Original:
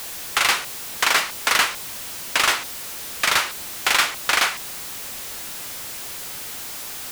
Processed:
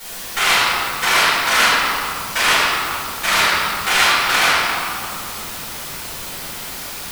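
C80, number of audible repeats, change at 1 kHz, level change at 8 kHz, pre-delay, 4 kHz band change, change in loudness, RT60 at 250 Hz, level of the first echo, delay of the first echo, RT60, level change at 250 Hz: −2.0 dB, no echo audible, +7.5 dB, +2.5 dB, 4 ms, +5.0 dB, +6.0 dB, 3.5 s, no echo audible, no echo audible, 2.6 s, +8.5 dB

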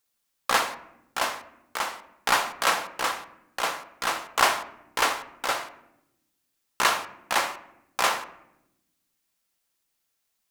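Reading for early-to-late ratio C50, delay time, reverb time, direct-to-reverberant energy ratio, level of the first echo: 13.5 dB, no echo audible, 0.85 s, 9.0 dB, no echo audible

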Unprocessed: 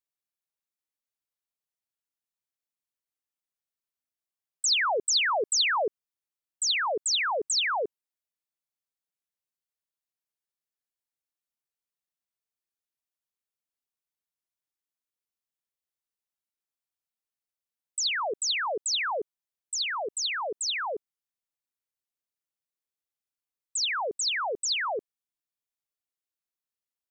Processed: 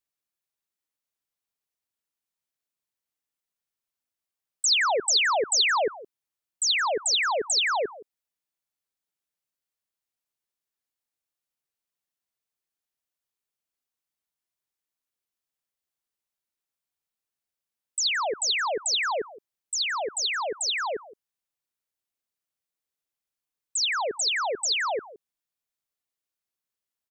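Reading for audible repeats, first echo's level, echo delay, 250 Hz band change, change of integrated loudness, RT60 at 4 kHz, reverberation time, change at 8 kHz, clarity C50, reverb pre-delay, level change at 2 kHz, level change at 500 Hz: 1, −18.0 dB, 168 ms, +2.5 dB, +2.5 dB, no reverb audible, no reverb audible, +2.5 dB, no reverb audible, no reverb audible, +2.5 dB, +2.5 dB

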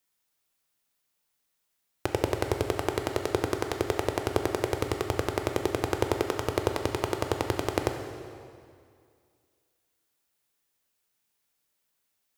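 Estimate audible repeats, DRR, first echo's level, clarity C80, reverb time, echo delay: no echo audible, 4.5 dB, no echo audible, 7.0 dB, 2.2 s, no echo audible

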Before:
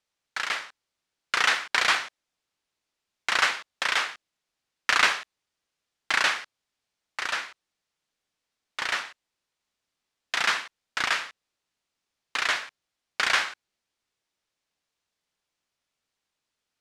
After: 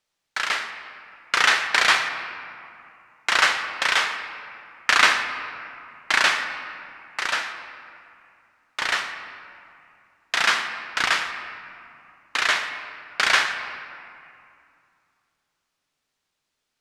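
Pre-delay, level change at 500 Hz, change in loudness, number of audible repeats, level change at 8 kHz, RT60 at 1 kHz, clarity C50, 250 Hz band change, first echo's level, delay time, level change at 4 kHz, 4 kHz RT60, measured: 3 ms, +5.0 dB, +4.0 dB, no echo audible, +4.5 dB, 2.5 s, 7.5 dB, +5.5 dB, no echo audible, no echo audible, +4.5 dB, 1.5 s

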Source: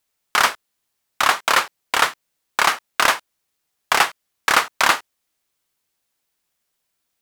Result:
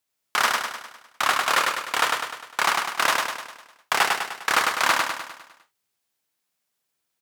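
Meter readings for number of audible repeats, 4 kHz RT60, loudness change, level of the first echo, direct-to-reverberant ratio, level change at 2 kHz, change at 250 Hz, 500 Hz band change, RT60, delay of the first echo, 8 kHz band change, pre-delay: 6, no reverb audible, −4.0 dB, −3.0 dB, no reverb audible, −3.0 dB, −3.0 dB, −3.0 dB, no reverb audible, 101 ms, −3.0 dB, no reverb audible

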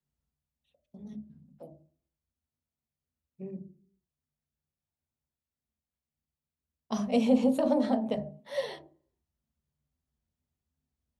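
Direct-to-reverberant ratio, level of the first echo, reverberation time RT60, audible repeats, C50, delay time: 8.0 dB, no echo audible, 0.45 s, no echo audible, 15.0 dB, no echo audible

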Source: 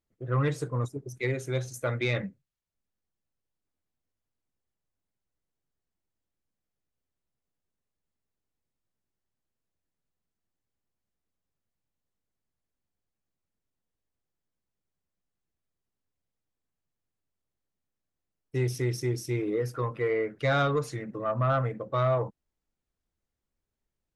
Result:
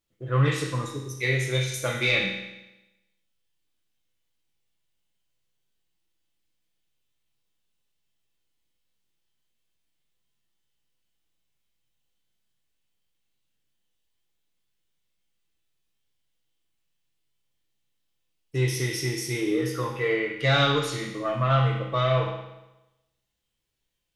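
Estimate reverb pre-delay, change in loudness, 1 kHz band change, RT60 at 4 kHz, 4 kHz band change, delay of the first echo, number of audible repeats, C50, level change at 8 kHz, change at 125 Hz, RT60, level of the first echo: 6 ms, +4.0 dB, +3.0 dB, 0.95 s, +13.0 dB, no echo audible, no echo audible, 2.0 dB, +8.5 dB, +4.0 dB, 1.0 s, no echo audible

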